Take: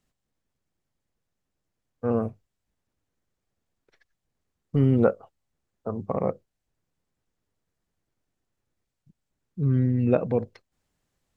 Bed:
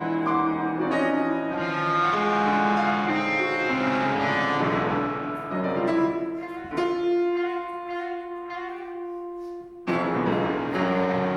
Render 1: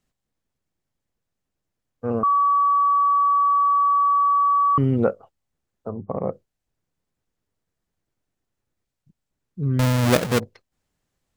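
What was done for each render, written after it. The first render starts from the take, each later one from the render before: 2.23–4.78 bleep 1140 Hz -15 dBFS; 5.89–6.31 LPF 1200 Hz -> 1600 Hz; 9.79–10.4 half-waves squared off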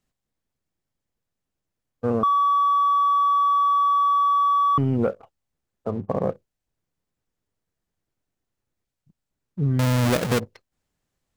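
sample leveller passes 1; compressor, threshold -18 dBFS, peak gain reduction 7 dB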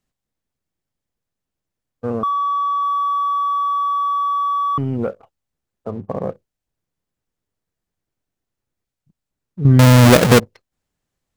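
2.31–2.83 elliptic band-pass 340–7600 Hz; 9.65–10.4 gain +11.5 dB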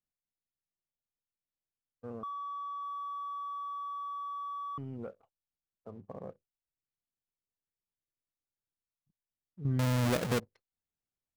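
gain -20 dB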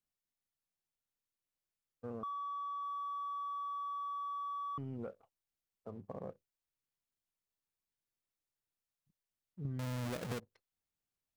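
compressor 6:1, threshold -38 dBFS, peak gain reduction 11.5 dB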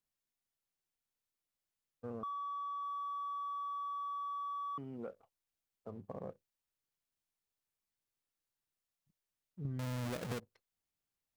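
4.54–5.11 HPF 190 Hz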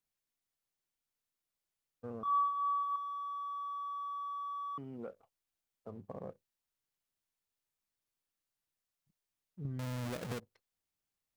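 2.23–2.96 flutter echo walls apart 3.9 m, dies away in 1.5 s

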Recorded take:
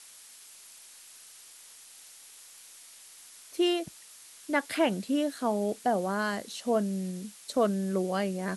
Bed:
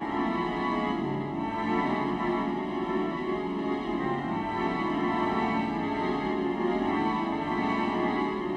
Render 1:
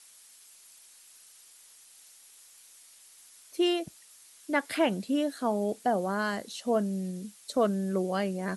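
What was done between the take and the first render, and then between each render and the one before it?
denoiser 6 dB, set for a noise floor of -52 dBFS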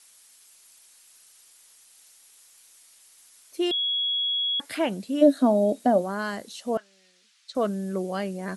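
3.71–4.6 bleep 3340 Hz -23 dBFS; 5.21–6.01 small resonant body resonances 270/580/3800 Hz, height 18 dB -> 14 dB, ringing for 50 ms; 6.77–7.55 Butterworth band-pass 2600 Hz, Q 0.68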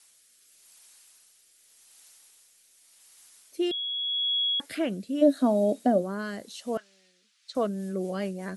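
rotary speaker horn 0.85 Hz, later 5.5 Hz, at 7.17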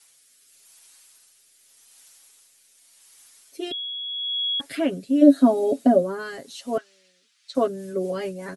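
comb 7.3 ms, depth 93%; dynamic EQ 340 Hz, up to +5 dB, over -31 dBFS, Q 0.73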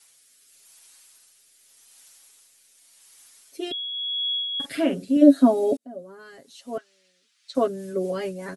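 3.87–5.17 doubler 46 ms -6.5 dB; 5.77–7.7 fade in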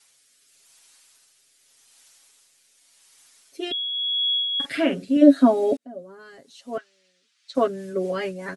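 Bessel low-pass 8300 Hz, order 2; dynamic EQ 1900 Hz, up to +7 dB, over -43 dBFS, Q 0.74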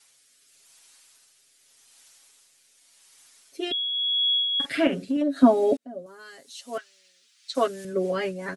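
4.87–5.43 compressor 8:1, threshold -21 dBFS; 6.06–7.85 tilt +3 dB/oct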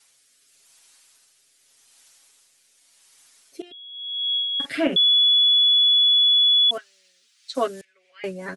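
3.62–4.36 fade in quadratic, from -17 dB; 4.96–6.71 bleep 3410 Hz -13.5 dBFS; 7.81–8.24 ladder band-pass 2500 Hz, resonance 65%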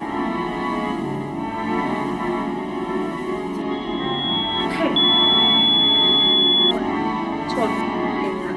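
add bed +5 dB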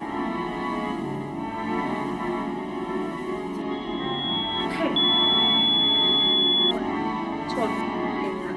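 gain -4.5 dB

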